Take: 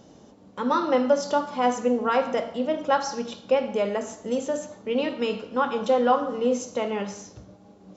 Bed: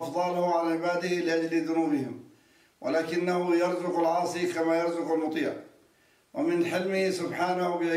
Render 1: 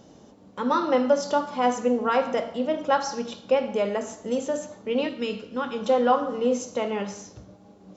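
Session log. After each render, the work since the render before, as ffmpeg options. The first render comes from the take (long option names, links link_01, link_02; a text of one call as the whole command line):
ffmpeg -i in.wav -filter_complex "[0:a]asettb=1/sr,asplit=3[link_01][link_02][link_03];[link_01]atrim=end=5.074[link_04];[link_02]atrim=start=5.07:end=5.86,asetpts=PTS-STARTPTS,afade=type=in:duration=0.004:curve=qsin,afade=type=out:start_time=0.786:duration=0.004:curve=qsin,equalizer=frequency=860:width=0.88:gain=-8.5[link_05];[link_03]atrim=start=5.856[link_06];[link_04][link_05]acrossfade=duration=0.004:curve1=hsin:curve2=qsin[link_07];[link_07][link_06]acrossfade=duration=0.004:curve1=qsin:curve2=hsin" out.wav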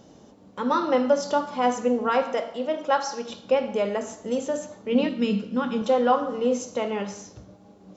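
ffmpeg -i in.wav -filter_complex "[0:a]asettb=1/sr,asplit=3[link_01][link_02][link_03];[link_01]atrim=end=2.234[link_04];[link_02]atrim=start=2.23:end=3.3,asetpts=PTS-STARTPTS,afade=type=in:duration=0.004:curve=qsin,afade=type=out:start_time=1.066:duration=0.004:curve=qsin,bass=frequency=250:gain=-10,treble=frequency=4000:gain=0[link_05];[link_03]atrim=start=3.296[link_06];[link_04][link_05]acrossfade=duration=0.004:curve1=hsin:curve2=qsin[link_07];[link_07][link_06]acrossfade=duration=0.004:curve1=qsin:curve2=hsin,asettb=1/sr,asplit=3[link_08][link_09][link_10];[link_08]atrim=end=4.924[link_11];[link_09]atrim=start=4.92:end=5.82,asetpts=PTS-STARTPTS,afade=type=in:duration=0.004:curve=qsin,afade=type=out:start_time=0.896:duration=0.004:curve=qsin,equalizer=frequency=200:width=2.2:gain=13[link_12];[link_10]atrim=start=5.816[link_13];[link_11][link_12]acrossfade=duration=0.004:curve1=hsin:curve2=qsin[link_14];[link_14][link_13]acrossfade=duration=0.004:curve1=qsin:curve2=hsin" out.wav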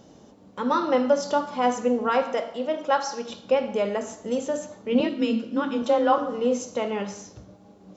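ffmpeg -i in.wav -filter_complex "[0:a]asettb=1/sr,asplit=3[link_01][link_02][link_03];[link_01]atrim=end=5.004[link_04];[link_02]atrim=start=5:end=6.18,asetpts=PTS-STARTPTS,afade=type=in:duration=0.004:curve=qsin,afade=type=out:start_time=1.176:duration=0.004:curve=qsin,afreqshift=25[link_05];[link_03]atrim=start=6.176[link_06];[link_04][link_05]acrossfade=duration=0.004:curve1=hsin:curve2=qsin[link_07];[link_07][link_06]acrossfade=duration=0.004:curve1=qsin:curve2=hsin" out.wav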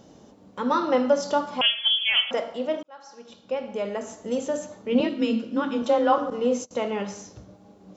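ffmpeg -i in.wav -filter_complex "[0:a]asettb=1/sr,asplit=3[link_01][link_02][link_03];[link_01]atrim=end=1.614[link_04];[link_02]atrim=start=1.61:end=2.31,asetpts=PTS-STARTPTS,afade=type=in:duration=0.004:curve=qsin,afade=type=out:start_time=0.696:duration=0.004:curve=qsin,lowpass=frequency=3100:width_type=q:width=0.5098,lowpass=frequency=3100:width_type=q:width=0.6013,lowpass=frequency=3100:width_type=q:width=0.9,lowpass=frequency=3100:width_type=q:width=2.563,afreqshift=-3600[link_05];[link_03]atrim=start=2.306[link_06];[link_04][link_05]acrossfade=duration=0.004:curve1=hsin:curve2=qsin[link_07];[link_07][link_06]acrossfade=duration=0.004:curve1=qsin:curve2=hsin,asettb=1/sr,asplit=3[link_08][link_09][link_10];[link_08]atrim=end=6.304[link_11];[link_09]atrim=start=6.3:end=6.71,asetpts=PTS-STARTPTS,afade=type=in:duration=0.004:curve=qsin,afade=type=out:start_time=0.406:duration=0.004:curve=qsin,agate=range=-25dB:threshold=-35dB:ratio=16:release=100:detection=peak[link_12];[link_10]atrim=start=6.706[link_13];[link_11][link_12]acrossfade=duration=0.004:curve1=hsin:curve2=qsin[link_14];[link_14][link_13]acrossfade=duration=0.004:curve1=qsin:curve2=hsin,asplit=2[link_15][link_16];[link_15]atrim=end=2.83,asetpts=PTS-STARTPTS,afade=type=out:start_time=2.826:duration=0.004:curve=hsin[link_17];[link_16]atrim=start=2.83,asetpts=PTS-STARTPTS,afade=type=in:duration=1.6[link_18];[link_17][link_18]concat=n=2:v=0:a=1" out.wav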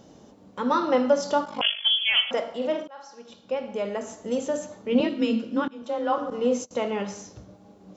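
ffmpeg -i in.wav -filter_complex "[0:a]asettb=1/sr,asplit=3[link_01][link_02][link_03];[link_01]atrim=end=1.444[link_04];[link_02]atrim=start=1.44:end=1.85,asetpts=PTS-STARTPTS,afade=type=in:duration=0.004:curve=qsin,afade=type=out:start_time=0.406:duration=0.004:curve=qsin,aeval=exprs='val(0)*sin(2*PI*25*n/s)':channel_layout=same[link_05];[link_03]atrim=start=1.846[link_06];[link_04][link_05]acrossfade=duration=0.004:curve1=hsin:curve2=qsin[link_07];[link_07][link_06]acrossfade=duration=0.004:curve1=qsin:curve2=hsin,asettb=1/sr,asplit=3[link_08][link_09][link_10];[link_08]atrim=end=2.574[link_11];[link_09]atrim=start=2.57:end=3.07,asetpts=PTS-STARTPTS,afade=type=in:duration=0.004:curve=qsin,afade=type=out:start_time=0.496:duration=0.004:curve=qsin,asplit=2[link_12][link_13];[link_13]adelay=47,volume=-4dB[link_14];[link_12][link_14]amix=inputs=2:normalize=0,atrim=end_sample=22050[link_15];[link_10]atrim=start=3.066[link_16];[link_11][link_15]acrossfade=duration=0.004:curve1=hsin:curve2=qsin[link_17];[link_17][link_16]acrossfade=duration=0.004:curve1=qsin:curve2=hsin,asplit=2[link_18][link_19];[link_18]atrim=end=5.68,asetpts=PTS-STARTPTS,afade=type=out:start_time=5.676:duration=0.004:curve=hsin:silence=0.0891251[link_20];[link_19]atrim=start=5.68,asetpts=PTS-STARTPTS,afade=type=in:duration=0.78:silence=0.0891251[link_21];[link_20][link_21]concat=n=2:v=0:a=1" out.wav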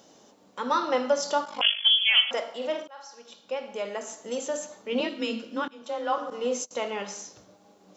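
ffmpeg -i in.wav -af "highpass=frequency=630:poles=1,highshelf=frequency=4200:gain=5.5" out.wav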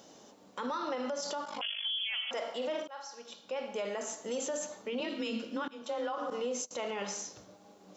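ffmpeg -i in.wav -af "acompressor=threshold=-26dB:ratio=10,alimiter=level_in=3.5dB:limit=-24dB:level=0:latency=1:release=36,volume=-3.5dB" out.wav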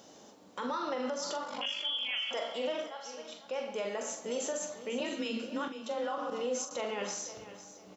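ffmpeg -i in.wav -filter_complex "[0:a]asplit=2[link_01][link_02];[link_02]adelay=43,volume=-8dB[link_03];[link_01][link_03]amix=inputs=2:normalize=0,aecho=1:1:499|998|1497:0.2|0.0579|0.0168" out.wav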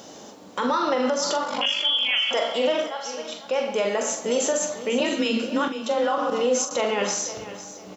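ffmpeg -i in.wav -af "volume=12dB" out.wav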